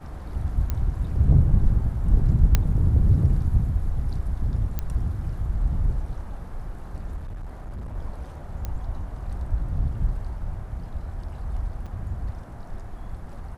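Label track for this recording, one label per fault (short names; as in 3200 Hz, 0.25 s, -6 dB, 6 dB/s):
0.700000	0.700000	pop -14 dBFS
2.550000	2.550000	pop -5 dBFS
4.790000	4.790000	pop -14 dBFS
7.160000	7.950000	clipped -31 dBFS
8.650000	8.650000	pop -17 dBFS
11.860000	11.870000	gap 5.5 ms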